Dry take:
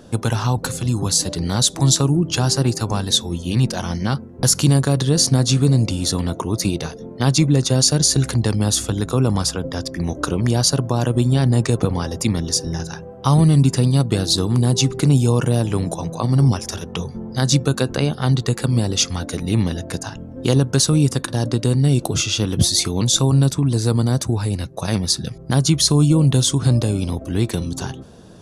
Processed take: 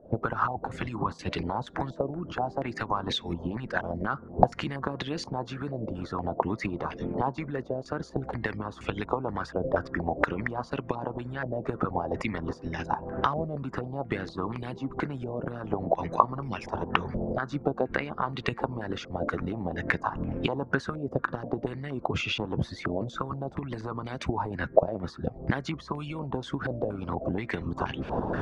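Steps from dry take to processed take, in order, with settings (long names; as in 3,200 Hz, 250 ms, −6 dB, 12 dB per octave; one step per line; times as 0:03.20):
camcorder AGC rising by 76 dB per second
hum removal 234.2 Hz, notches 10
harmonic and percussive parts rebalanced harmonic −15 dB
low-pass on a step sequencer 4.2 Hz 620–2,400 Hz
level −9.5 dB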